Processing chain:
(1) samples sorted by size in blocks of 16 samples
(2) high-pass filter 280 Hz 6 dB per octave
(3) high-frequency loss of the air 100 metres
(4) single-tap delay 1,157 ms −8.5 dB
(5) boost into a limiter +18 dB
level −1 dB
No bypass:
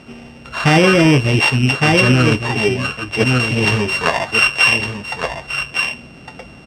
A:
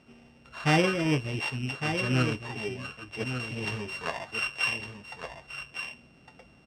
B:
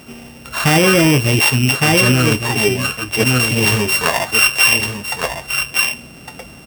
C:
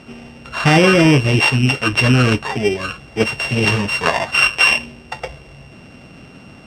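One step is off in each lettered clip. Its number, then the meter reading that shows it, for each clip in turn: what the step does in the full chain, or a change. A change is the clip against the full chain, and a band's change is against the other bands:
5, change in crest factor +6.5 dB
3, 8 kHz band +10.5 dB
4, change in momentary loudness spread +6 LU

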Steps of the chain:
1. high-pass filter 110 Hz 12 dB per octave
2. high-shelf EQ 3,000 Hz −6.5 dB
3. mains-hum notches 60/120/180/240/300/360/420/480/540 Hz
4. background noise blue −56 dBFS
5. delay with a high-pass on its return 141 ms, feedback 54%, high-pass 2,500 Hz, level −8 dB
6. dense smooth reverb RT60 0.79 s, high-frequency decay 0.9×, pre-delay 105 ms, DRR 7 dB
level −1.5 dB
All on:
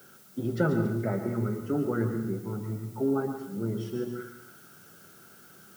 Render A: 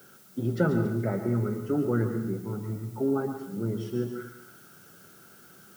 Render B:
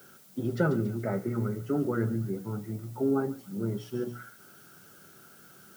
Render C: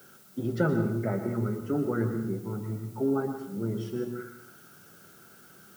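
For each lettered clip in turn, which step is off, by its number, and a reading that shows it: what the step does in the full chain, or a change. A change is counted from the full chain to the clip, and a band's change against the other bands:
3, 125 Hz band +2.0 dB
6, echo-to-direct ratio −5.5 dB to −13.5 dB
5, change in momentary loudness spread −2 LU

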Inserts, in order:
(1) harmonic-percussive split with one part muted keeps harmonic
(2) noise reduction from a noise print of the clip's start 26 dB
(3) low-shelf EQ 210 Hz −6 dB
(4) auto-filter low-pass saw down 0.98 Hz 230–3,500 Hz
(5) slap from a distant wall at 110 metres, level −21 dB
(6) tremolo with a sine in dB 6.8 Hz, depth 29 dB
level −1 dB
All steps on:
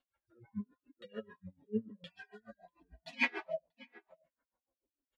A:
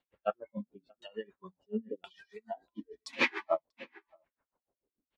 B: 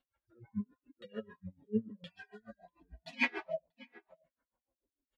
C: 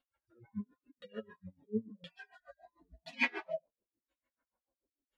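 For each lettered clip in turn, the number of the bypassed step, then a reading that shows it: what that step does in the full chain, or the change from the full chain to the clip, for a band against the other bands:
1, 1 kHz band +6.5 dB
3, 125 Hz band +3.0 dB
5, change in momentary loudness spread −2 LU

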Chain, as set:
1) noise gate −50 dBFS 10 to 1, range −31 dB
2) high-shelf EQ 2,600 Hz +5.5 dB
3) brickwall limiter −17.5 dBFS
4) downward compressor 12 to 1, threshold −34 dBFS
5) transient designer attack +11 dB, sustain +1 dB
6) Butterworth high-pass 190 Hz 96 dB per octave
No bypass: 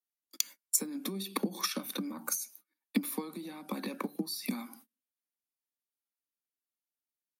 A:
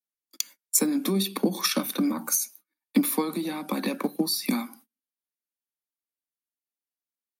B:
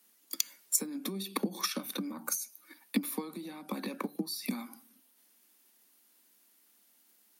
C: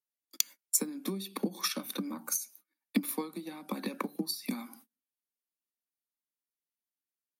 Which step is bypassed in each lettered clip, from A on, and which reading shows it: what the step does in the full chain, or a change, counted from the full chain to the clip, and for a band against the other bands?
4, average gain reduction 9.0 dB
1, change in momentary loudness spread +2 LU
3, average gain reduction 2.5 dB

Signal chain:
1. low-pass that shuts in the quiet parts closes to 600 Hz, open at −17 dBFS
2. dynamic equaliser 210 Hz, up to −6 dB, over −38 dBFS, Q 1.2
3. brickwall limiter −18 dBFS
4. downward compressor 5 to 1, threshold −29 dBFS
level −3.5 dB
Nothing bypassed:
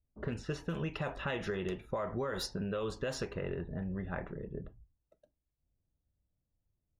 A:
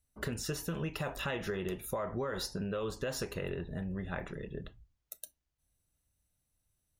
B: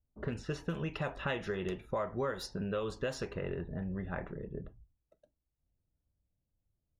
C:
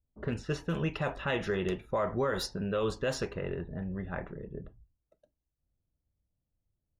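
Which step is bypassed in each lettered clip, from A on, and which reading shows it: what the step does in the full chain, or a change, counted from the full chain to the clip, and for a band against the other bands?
1, 8 kHz band +6.5 dB
3, change in crest factor +2.0 dB
4, average gain reduction 2.5 dB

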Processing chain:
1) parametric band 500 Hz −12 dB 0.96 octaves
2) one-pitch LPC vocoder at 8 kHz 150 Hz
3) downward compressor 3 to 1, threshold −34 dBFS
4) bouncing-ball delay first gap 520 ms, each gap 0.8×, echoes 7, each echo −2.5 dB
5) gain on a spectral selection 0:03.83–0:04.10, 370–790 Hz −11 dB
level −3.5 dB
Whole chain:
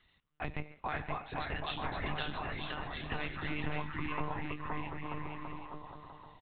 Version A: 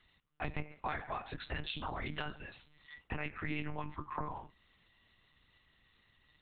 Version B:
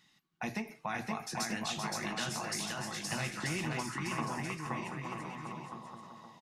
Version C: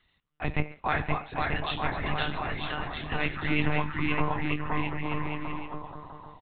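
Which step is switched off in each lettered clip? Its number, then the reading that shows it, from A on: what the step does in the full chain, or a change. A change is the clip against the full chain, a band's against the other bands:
4, change in momentary loudness spread +4 LU
2, 4 kHz band +3.5 dB
3, average gain reduction 6.5 dB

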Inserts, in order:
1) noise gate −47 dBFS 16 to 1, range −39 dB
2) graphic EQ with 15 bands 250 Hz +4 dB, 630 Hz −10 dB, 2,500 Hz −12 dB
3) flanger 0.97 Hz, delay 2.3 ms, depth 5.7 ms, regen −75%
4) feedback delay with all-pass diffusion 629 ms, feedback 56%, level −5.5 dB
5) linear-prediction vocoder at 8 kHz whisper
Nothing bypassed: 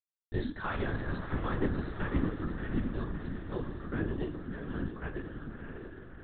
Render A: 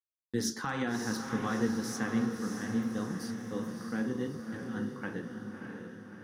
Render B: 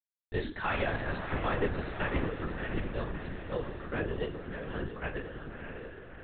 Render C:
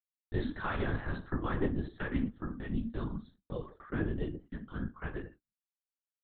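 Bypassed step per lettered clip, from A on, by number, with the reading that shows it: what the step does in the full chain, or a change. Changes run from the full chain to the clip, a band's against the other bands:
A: 5, 4 kHz band +6.5 dB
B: 2, 250 Hz band −7.5 dB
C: 4, change in momentary loudness spread −1 LU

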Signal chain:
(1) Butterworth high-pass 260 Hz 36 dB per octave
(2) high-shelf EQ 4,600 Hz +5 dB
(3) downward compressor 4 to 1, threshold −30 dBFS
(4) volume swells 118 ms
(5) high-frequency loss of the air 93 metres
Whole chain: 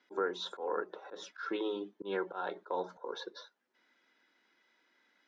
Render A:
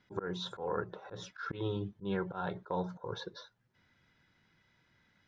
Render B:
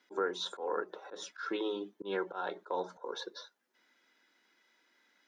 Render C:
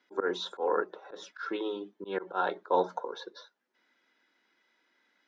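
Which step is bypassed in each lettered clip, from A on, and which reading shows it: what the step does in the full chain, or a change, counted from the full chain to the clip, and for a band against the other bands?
1, 250 Hz band +4.0 dB
5, 4 kHz band +2.0 dB
3, change in momentary loudness spread +3 LU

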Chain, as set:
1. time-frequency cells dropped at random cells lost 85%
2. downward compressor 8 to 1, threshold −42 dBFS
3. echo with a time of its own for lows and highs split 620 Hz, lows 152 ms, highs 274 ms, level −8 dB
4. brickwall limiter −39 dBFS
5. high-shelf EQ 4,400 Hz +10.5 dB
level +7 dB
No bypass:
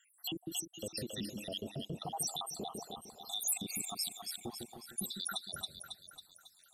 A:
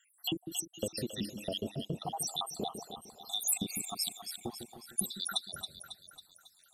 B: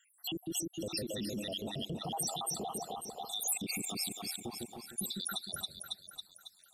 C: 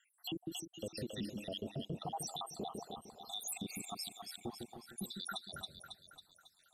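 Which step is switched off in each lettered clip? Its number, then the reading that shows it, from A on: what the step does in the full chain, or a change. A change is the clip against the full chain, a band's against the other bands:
4, change in crest factor +6.0 dB
2, average gain reduction 9.5 dB
5, 8 kHz band −8.0 dB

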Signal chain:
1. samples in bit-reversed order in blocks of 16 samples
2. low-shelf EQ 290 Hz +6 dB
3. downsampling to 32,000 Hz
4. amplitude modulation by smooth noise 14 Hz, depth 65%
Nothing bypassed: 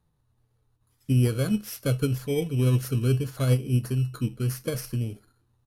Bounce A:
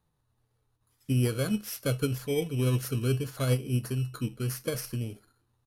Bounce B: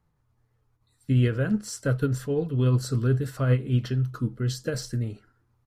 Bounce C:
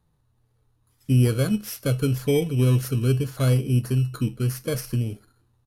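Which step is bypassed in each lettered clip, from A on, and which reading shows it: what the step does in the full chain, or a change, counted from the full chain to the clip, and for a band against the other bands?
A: 2, 125 Hz band −4.5 dB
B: 1, 2 kHz band +3.0 dB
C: 4, change in integrated loudness +3.0 LU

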